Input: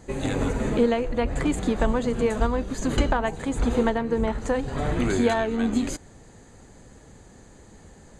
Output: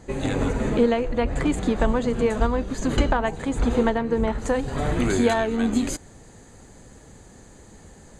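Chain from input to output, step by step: high shelf 8800 Hz -5.5 dB, from 4.39 s +6.5 dB; gain +1.5 dB

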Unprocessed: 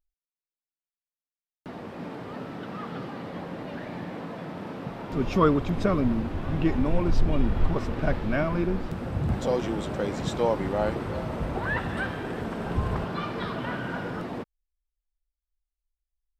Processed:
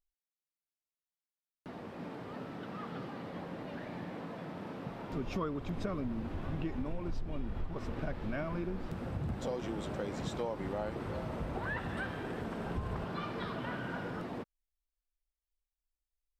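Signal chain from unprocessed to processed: compressor 6:1, threshold -26 dBFS, peak gain reduction 11.5 dB; gain -6.5 dB

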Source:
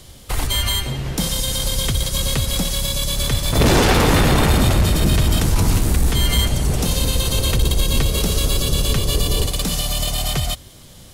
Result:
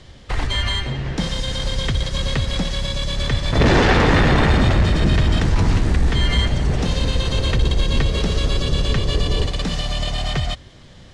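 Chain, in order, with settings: Gaussian blur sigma 1.6 samples; bell 1800 Hz +6 dB 0.34 oct

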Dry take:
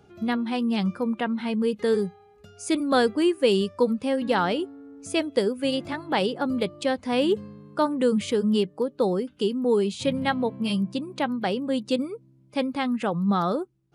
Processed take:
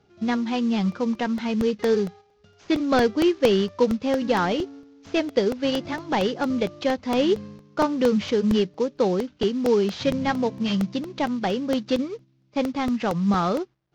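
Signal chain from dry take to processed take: CVSD 32 kbps; gate -43 dBFS, range -8 dB; crackling interface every 0.23 s, samples 64, repeat, from 0.92; gain +2 dB

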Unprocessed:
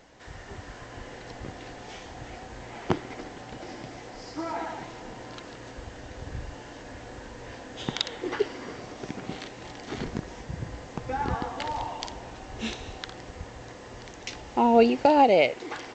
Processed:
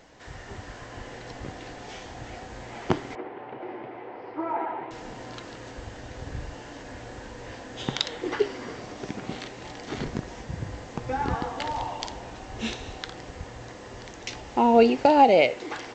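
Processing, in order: flange 0.61 Hz, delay 6 ms, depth 4.3 ms, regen +87%; 3.15–4.91 speaker cabinet 180–2400 Hz, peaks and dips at 180 Hz -9 dB, 270 Hz -4 dB, 380 Hz +8 dB, 910 Hz +5 dB, 1700 Hz -4 dB; gain +6 dB

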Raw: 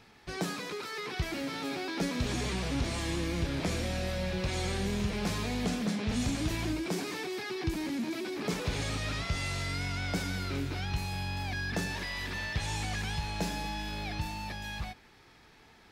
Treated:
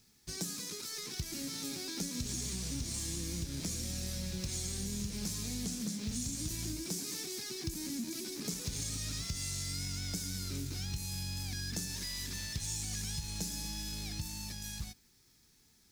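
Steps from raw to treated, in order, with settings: G.711 law mismatch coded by A; EQ curve 230 Hz 0 dB, 690 Hz -14 dB, 2900 Hz -6 dB, 6200 Hz +12 dB; compressor, threshold -34 dBFS, peak gain reduction 8 dB

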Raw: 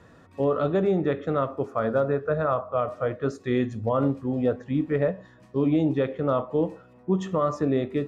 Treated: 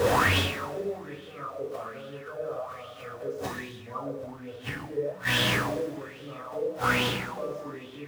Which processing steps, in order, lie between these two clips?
zero-crossing step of -29 dBFS; HPF 41 Hz 12 dB/oct; flipped gate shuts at -25 dBFS, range -27 dB; two-slope reverb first 0.87 s, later 2.7 s, from -18 dB, DRR -6 dB; LFO bell 1.2 Hz 470–3300 Hz +16 dB

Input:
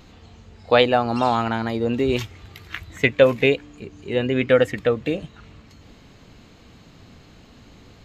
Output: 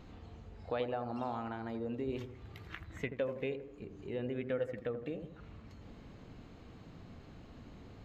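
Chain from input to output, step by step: high shelf 2500 Hz -11.5 dB; compressor 2:1, threshold -42 dBFS, peak gain reduction 17.5 dB; dark delay 82 ms, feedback 45%, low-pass 1200 Hz, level -8 dB; gain -4.5 dB

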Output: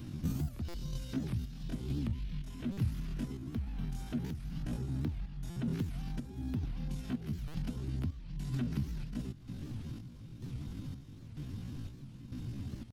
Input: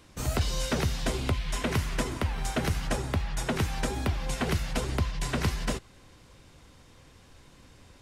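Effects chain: in parallel at 0 dB: limiter -28.5 dBFS, peak gain reduction 11 dB; on the sum: chopper 1.7 Hz, depth 60%, duty 55%; dynamic EQ 110 Hz, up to -7 dB, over -42 dBFS, Q 2.3; compressor 16:1, threshold -39 dBFS, peak gain reduction 18.5 dB; graphic EQ 125/250/500/1000/2000/4000/8000 Hz +10/+9/-10/-8/-8/-3/-11 dB; on a send: feedback echo 0.246 s, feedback 32%, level -22 dB; on the sum: tempo 0.62×; stuck buffer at 0.68/2.72/5.5/7.48, samples 256, times 10; record warp 78 rpm, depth 250 cents; gain +2.5 dB

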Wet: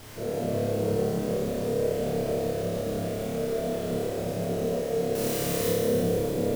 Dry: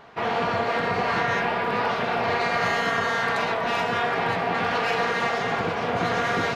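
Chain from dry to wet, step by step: Chebyshev low-pass 600 Hz, order 5; 5.15–5.7 requantised 6-bit, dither triangular; added noise pink -45 dBFS; on a send: flutter echo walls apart 4.9 m, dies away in 1.1 s; on the sum: lo-fi delay 0.152 s, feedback 80%, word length 7-bit, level -9 dB; gain -3 dB

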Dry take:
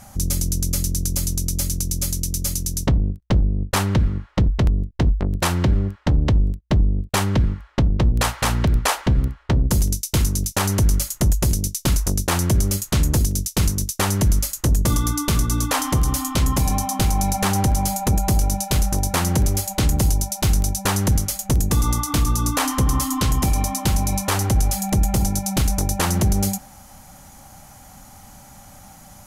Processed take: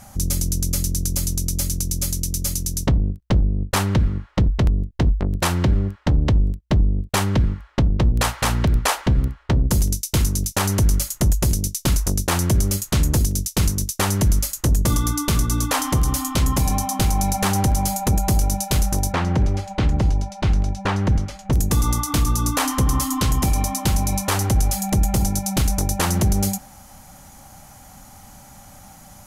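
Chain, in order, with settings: 19.12–21.53 LPF 2900 Hz 12 dB/oct

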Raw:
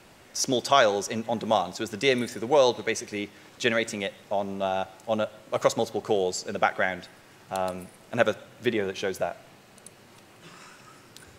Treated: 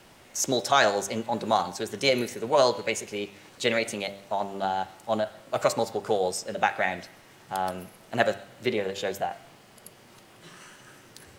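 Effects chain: formant shift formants +2 st; de-hum 98.91 Hz, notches 39

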